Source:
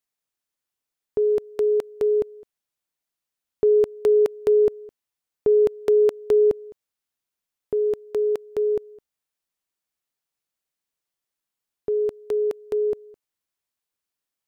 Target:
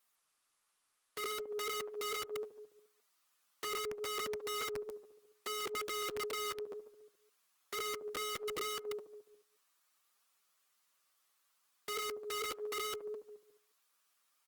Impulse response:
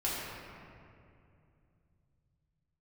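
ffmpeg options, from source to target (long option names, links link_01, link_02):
-filter_complex "[0:a]equalizer=frequency=1200:width=3.5:gain=9,acrossover=split=110[link_01][link_02];[link_01]acrusher=bits=2:mix=0:aa=0.5[link_03];[link_02]acompressor=threshold=-28dB:ratio=16[link_04];[link_03][link_04]amix=inputs=2:normalize=0,asplit=2[link_05][link_06];[link_06]adelay=142,lowpass=frequency=1400:poles=1,volume=-18dB,asplit=2[link_07][link_08];[link_08]adelay=142,lowpass=frequency=1400:poles=1,volume=0.52,asplit=2[link_09][link_10];[link_10]adelay=142,lowpass=frequency=1400:poles=1,volume=0.52,asplit=2[link_11][link_12];[link_12]adelay=142,lowpass=frequency=1400:poles=1,volume=0.52[link_13];[link_05][link_07][link_09][link_11][link_13]amix=inputs=5:normalize=0,flanger=delay=3.6:depth=7.8:regen=4:speed=0.68:shape=triangular,asoftclip=type=tanh:threshold=-34.5dB,lowshelf=frequency=470:gain=-11.5,alimiter=level_in=18dB:limit=-24dB:level=0:latency=1:release=13,volume=-18dB,asplit=2[link_14][link_15];[link_15]highpass=210[link_16];[1:a]atrim=start_sample=2205,afade=type=out:start_time=0.25:duration=0.01,atrim=end_sample=11466,asetrate=79380,aresample=44100[link_17];[link_16][link_17]afir=irnorm=-1:irlink=0,volume=-20.5dB[link_18];[link_14][link_18]amix=inputs=2:normalize=0,aeval=exprs='(mod(224*val(0)+1,2)-1)/224':channel_layout=same,volume=12.5dB" -ar 48000 -c:a libopus -b:a 24k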